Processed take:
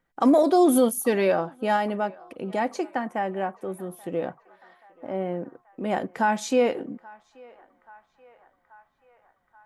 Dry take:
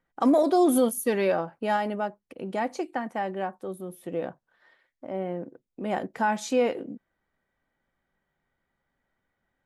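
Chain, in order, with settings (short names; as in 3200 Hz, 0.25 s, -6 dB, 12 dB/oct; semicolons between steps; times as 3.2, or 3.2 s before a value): 3.06–3.8 bell 4200 Hz -10 dB 0.46 oct; narrowing echo 0.831 s, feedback 74%, band-pass 1200 Hz, level -22 dB; gain +2.5 dB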